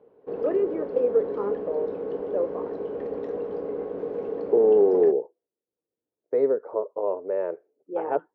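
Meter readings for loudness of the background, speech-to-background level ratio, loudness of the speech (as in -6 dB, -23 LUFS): -32.0 LUFS, 6.5 dB, -25.5 LUFS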